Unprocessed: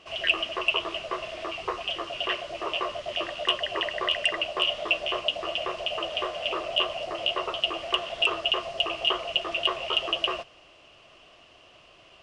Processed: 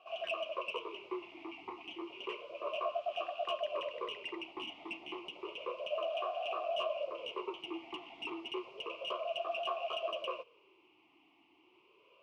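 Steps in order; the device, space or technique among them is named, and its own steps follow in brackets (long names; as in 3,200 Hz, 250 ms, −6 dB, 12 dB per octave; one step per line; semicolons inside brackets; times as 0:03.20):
talk box (tube saturation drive 22 dB, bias 0.35; formant filter swept between two vowels a-u 0.31 Hz)
0:06.03–0:06.77: high-pass filter 170 Hz 12 dB per octave
level +3 dB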